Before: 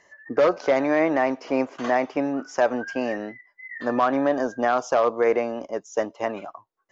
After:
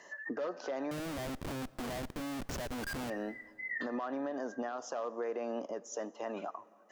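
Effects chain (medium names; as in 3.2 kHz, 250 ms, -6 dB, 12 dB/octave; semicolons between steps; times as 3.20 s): high-pass 170 Hz 24 dB/octave; band-stop 2.2 kHz, Q 5.7; compression 3:1, threshold -40 dBFS, peak gain reduction 18 dB; peak limiter -33 dBFS, peak gain reduction 10.5 dB; 0.91–3.10 s: Schmitt trigger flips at -44 dBFS; plate-style reverb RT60 3 s, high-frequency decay 0.65×, DRR 19.5 dB; trim +4 dB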